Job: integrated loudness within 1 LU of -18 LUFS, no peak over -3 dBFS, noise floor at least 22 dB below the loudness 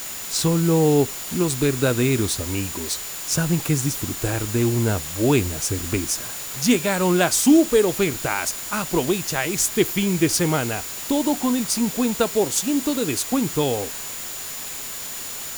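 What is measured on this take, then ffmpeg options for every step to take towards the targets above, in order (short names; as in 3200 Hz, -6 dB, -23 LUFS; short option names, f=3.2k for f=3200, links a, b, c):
steady tone 7000 Hz; tone level -36 dBFS; noise floor -32 dBFS; noise floor target -44 dBFS; loudness -21.5 LUFS; peak -4.0 dBFS; loudness target -18.0 LUFS
-> -af "bandreject=f=7k:w=30"
-af "afftdn=nr=12:nf=-32"
-af "volume=3.5dB,alimiter=limit=-3dB:level=0:latency=1"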